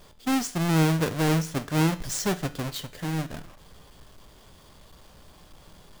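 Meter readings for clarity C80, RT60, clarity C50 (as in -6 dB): 20.5 dB, 0.50 s, 17.0 dB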